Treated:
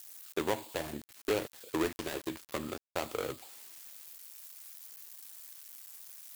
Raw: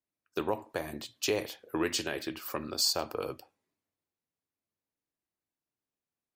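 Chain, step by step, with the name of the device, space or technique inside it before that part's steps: budget class-D amplifier (switching dead time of 0.25 ms; switching spikes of -34 dBFS)

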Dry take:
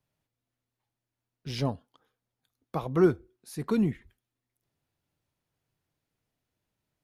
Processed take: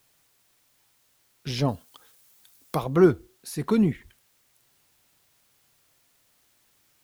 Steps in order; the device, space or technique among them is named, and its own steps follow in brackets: noise-reduction cassette on a plain deck (mismatched tape noise reduction encoder only; wow and flutter; white noise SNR 37 dB); 1.68–2.84 high shelf 5400 Hz +9 dB; gain +4.5 dB

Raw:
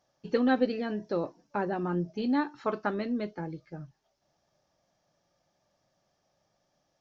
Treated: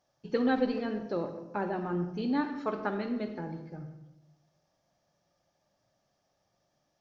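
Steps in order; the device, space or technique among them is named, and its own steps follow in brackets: saturated reverb return (on a send at -6 dB: reverb RT60 0.90 s, pre-delay 41 ms + soft clip -22 dBFS, distortion -15 dB); on the sum: gain -2.5 dB

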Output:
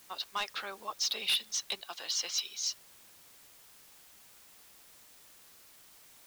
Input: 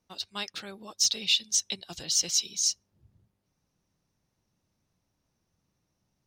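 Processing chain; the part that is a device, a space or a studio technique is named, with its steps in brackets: drive-through speaker (BPF 510–3400 Hz; bell 1100 Hz +7 dB 0.77 oct; hard clip -28 dBFS, distortion -9 dB; white noise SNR 18 dB); 1.81–2.65 low shelf 400 Hz -11 dB; gain +2.5 dB

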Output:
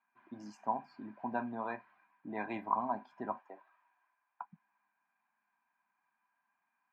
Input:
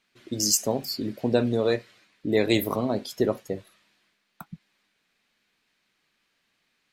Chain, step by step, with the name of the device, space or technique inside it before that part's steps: tin-can telephone (BPF 590–2600 Hz; small resonant body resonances 1000/1600/2400 Hz, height 14 dB, ringing for 40 ms); 3.38–4.45 HPF 330 Hz 24 dB/oct; EQ curve 230 Hz 0 dB, 490 Hz -25 dB, 770 Hz -3 dB, 3700 Hz -29 dB; gain +3 dB

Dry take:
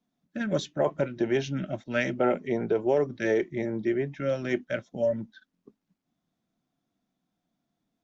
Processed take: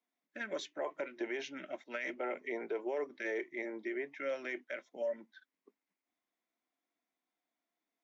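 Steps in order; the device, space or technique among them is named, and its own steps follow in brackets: laptop speaker (HPF 310 Hz 24 dB/oct; bell 1000 Hz +5 dB 0.37 oct; bell 2100 Hz +11 dB 0.54 oct; limiter -20 dBFS, peak gain reduction 12.5 dB); gain -8.5 dB

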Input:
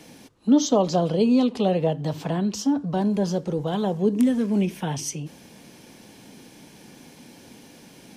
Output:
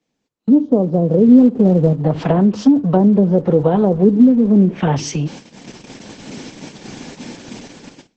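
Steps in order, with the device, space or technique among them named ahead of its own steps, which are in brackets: 1.28–1.93 tone controls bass +4 dB, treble -13 dB; treble ducked by the level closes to 370 Hz, closed at -18 dBFS; dynamic EQ 500 Hz, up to +4 dB, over -44 dBFS, Q 5.7; video call (HPF 100 Hz 24 dB/oct; AGC gain up to 16 dB; gate -31 dBFS, range -26 dB; Opus 12 kbps 48000 Hz)

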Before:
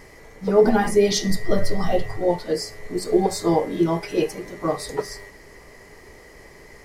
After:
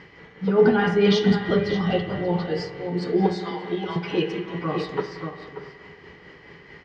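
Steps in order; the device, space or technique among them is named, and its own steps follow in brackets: 3.35–3.96 HPF 1200 Hz 12 dB/oct; outdoor echo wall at 100 m, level -8 dB; combo amplifier with spring reverb and tremolo (spring tank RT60 1.9 s, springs 45/57 ms, chirp 25 ms, DRR 8 dB; tremolo 4.6 Hz, depth 38%; speaker cabinet 83–4300 Hz, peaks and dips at 170 Hz +9 dB, 630 Hz -8 dB, 1500 Hz +6 dB, 3000 Hz +9 dB)

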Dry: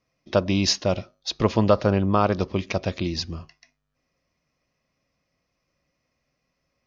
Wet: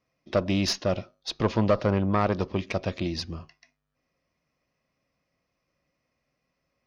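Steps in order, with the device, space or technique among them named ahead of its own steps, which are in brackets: tube preamp driven hard (tube stage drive 13 dB, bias 0.35; low shelf 110 Hz -4 dB; high shelf 5700 Hz -8.5 dB)

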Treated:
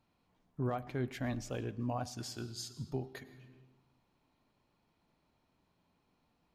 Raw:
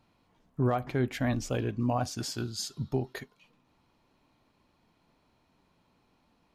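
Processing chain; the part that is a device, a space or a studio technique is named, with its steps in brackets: compressed reverb return (on a send at -6 dB: reverb RT60 1.0 s, pre-delay 93 ms + compressor 10:1, threshold -38 dBFS, peak gain reduction 16.5 dB); on the sum: gain -8 dB

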